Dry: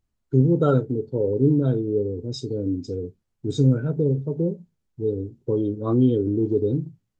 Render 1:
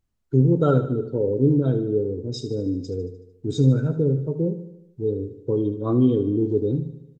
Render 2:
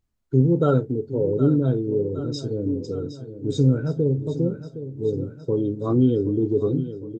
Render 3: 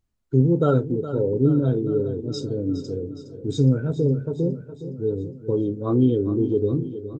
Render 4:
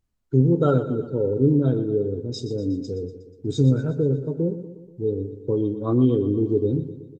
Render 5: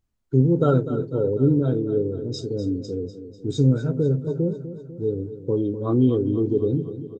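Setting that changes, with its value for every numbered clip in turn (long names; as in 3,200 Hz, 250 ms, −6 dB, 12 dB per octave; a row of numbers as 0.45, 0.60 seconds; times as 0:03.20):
repeating echo, delay time: 75, 764, 414, 121, 248 milliseconds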